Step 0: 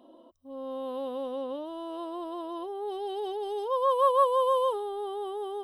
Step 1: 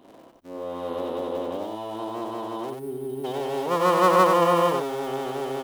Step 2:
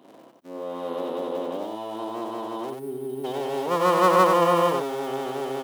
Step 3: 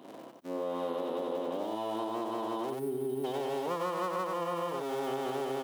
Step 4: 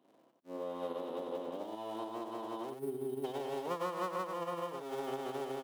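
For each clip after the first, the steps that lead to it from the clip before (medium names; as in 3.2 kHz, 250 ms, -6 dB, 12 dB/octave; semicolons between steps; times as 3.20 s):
cycle switcher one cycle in 3, muted; time-frequency box 2.70–3.25 s, 420–8400 Hz -19 dB; on a send: delay 92 ms -4.5 dB; on the sum: trim +5.5 dB
high-pass 130 Hz 24 dB/octave
compression 12:1, threshold -32 dBFS, peak gain reduction 19.5 dB; trim +2 dB
upward expansion 2.5:1, over -43 dBFS; trim -1.5 dB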